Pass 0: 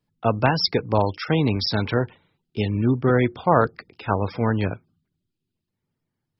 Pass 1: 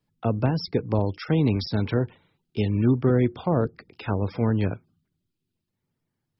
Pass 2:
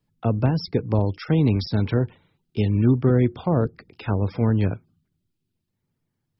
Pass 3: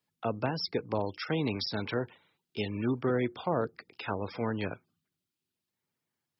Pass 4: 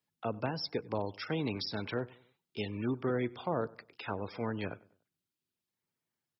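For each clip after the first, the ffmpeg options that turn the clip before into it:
ffmpeg -i in.wav -filter_complex "[0:a]acrossover=split=490[link_01][link_02];[link_02]acompressor=threshold=-34dB:ratio=5[link_03];[link_01][link_03]amix=inputs=2:normalize=0" out.wav
ffmpeg -i in.wav -af "lowshelf=frequency=190:gain=5" out.wav
ffmpeg -i in.wav -af "highpass=frequency=870:poles=1" out.wav
ffmpeg -i in.wav -filter_complex "[0:a]asplit=2[link_01][link_02];[link_02]adelay=97,lowpass=frequency=2200:poles=1,volume=-21.5dB,asplit=2[link_03][link_04];[link_04]adelay=97,lowpass=frequency=2200:poles=1,volume=0.41,asplit=2[link_05][link_06];[link_06]adelay=97,lowpass=frequency=2200:poles=1,volume=0.41[link_07];[link_01][link_03][link_05][link_07]amix=inputs=4:normalize=0,volume=-3.5dB" out.wav

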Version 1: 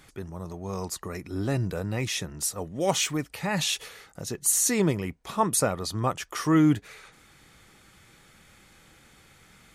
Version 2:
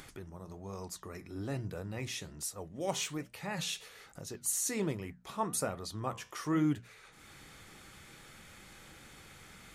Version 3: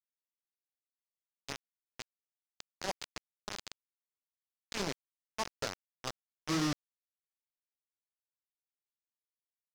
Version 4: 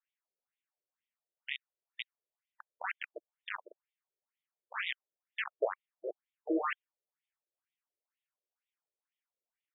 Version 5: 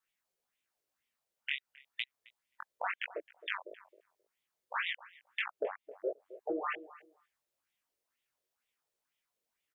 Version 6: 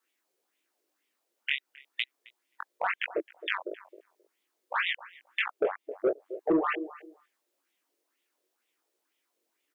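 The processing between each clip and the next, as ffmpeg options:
ffmpeg -i in.wav -af "bandreject=frequency=60:width_type=h:width=6,bandreject=frequency=120:width_type=h:width=6,bandreject=frequency=180:width_type=h:width=6,bandreject=frequency=240:width_type=h:width=6,acompressor=mode=upward:threshold=-32dB:ratio=2.5,flanger=delay=7.3:depth=9.6:regen=-76:speed=1.2:shape=sinusoidal,volume=-5.5dB" out.wav
ffmpeg -i in.wav -af "aresample=11025,acrusher=bits=4:mix=0:aa=0.000001,aresample=44100,asoftclip=type=tanh:threshold=-36.5dB,volume=8.5dB" out.wav
ffmpeg -i in.wav -af "afftfilt=real='re*between(b*sr/1024,440*pow(2700/440,0.5+0.5*sin(2*PI*2.1*pts/sr))/1.41,440*pow(2700/440,0.5+0.5*sin(2*PI*2.1*pts/sr))*1.41)':imag='im*between(b*sr/1024,440*pow(2700/440,0.5+0.5*sin(2*PI*2.1*pts/sr))/1.41,440*pow(2700/440,0.5+0.5*sin(2*PI*2.1*pts/sr))*1.41)':win_size=1024:overlap=0.75,volume=10dB" out.wav
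ffmpeg -i in.wav -filter_complex "[0:a]acompressor=threshold=-39dB:ratio=10,flanger=delay=16.5:depth=5.2:speed=2.9,asplit=2[link_01][link_02];[link_02]adelay=265,lowpass=frequency=890:poles=1,volume=-14dB,asplit=2[link_03][link_04];[link_04]adelay=265,lowpass=frequency=890:poles=1,volume=0.19[link_05];[link_01][link_03][link_05]amix=inputs=3:normalize=0,volume=10.5dB" out.wav
ffmpeg -i in.wav -filter_complex "[0:a]highpass=frequency=320:width_type=q:width=3.6,acrossover=split=1700[link_01][link_02];[link_01]asoftclip=type=tanh:threshold=-24dB[link_03];[link_03][link_02]amix=inputs=2:normalize=0,volume=6dB" out.wav

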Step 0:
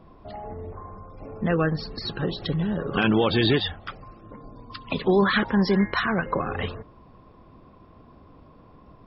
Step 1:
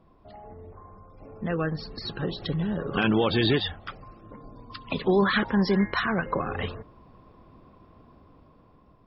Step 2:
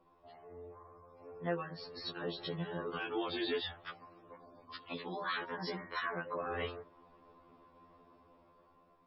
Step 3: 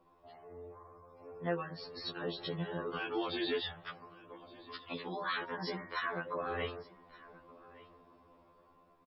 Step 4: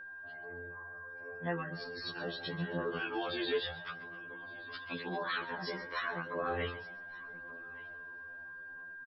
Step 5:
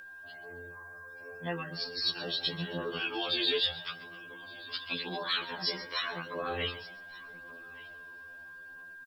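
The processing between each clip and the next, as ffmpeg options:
ffmpeg -i in.wav -af "dynaudnorm=framelen=670:gausssize=5:maxgain=8dB,volume=-8.5dB" out.wav
ffmpeg -i in.wav -af "bass=frequency=250:gain=-13,treble=frequency=4000:gain=-3,alimiter=limit=-22dB:level=0:latency=1:release=220,afftfilt=real='re*2*eq(mod(b,4),0)':imag='im*2*eq(mod(b,4),0)':win_size=2048:overlap=0.75,volume=-2.5dB" out.wav
ffmpeg -i in.wav -af "aecho=1:1:1172:0.0891,volume=1dB" out.wav
ffmpeg -i in.wav -filter_complex "[0:a]asplit=4[link_01][link_02][link_03][link_04];[link_02]adelay=134,afreqshift=89,volume=-16.5dB[link_05];[link_03]adelay=268,afreqshift=178,volume=-26.4dB[link_06];[link_04]adelay=402,afreqshift=267,volume=-36.3dB[link_07];[link_01][link_05][link_06][link_07]amix=inputs=4:normalize=0,flanger=delay=9.9:depth=3.9:regen=36:speed=0.43:shape=triangular,aeval=exprs='val(0)+0.00355*sin(2*PI*1600*n/s)':channel_layout=same,volume=4dB" out.wav
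ffmpeg -i in.wav -af "aexciter=amount=3:drive=7.8:freq=2500" out.wav

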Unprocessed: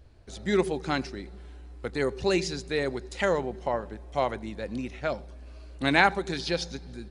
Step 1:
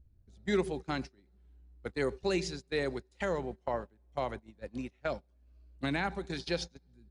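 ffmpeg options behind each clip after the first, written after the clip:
ffmpeg -i in.wav -filter_complex "[0:a]agate=range=-23dB:threshold=-32dB:ratio=16:detection=peak,acrossover=split=250[link_01][link_02];[link_01]acompressor=mode=upward:threshold=-41dB:ratio=2.5[link_03];[link_02]alimiter=limit=-18dB:level=0:latency=1:release=485[link_04];[link_03][link_04]amix=inputs=2:normalize=0,volume=-4dB" out.wav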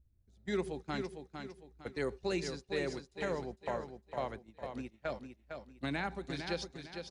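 ffmpeg -i in.wav -filter_complex "[0:a]dynaudnorm=framelen=340:gausssize=3:maxgain=3.5dB,asplit=2[link_01][link_02];[link_02]aecho=0:1:455|910|1365|1820:0.447|0.156|0.0547|0.0192[link_03];[link_01][link_03]amix=inputs=2:normalize=0,volume=-7.5dB" out.wav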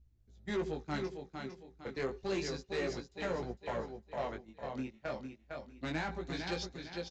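ffmpeg -i in.wav -af "aresample=16000,asoftclip=type=tanh:threshold=-32.5dB,aresample=44100,flanger=delay=16.5:depth=6.5:speed=0.3,volume=5.5dB" out.wav

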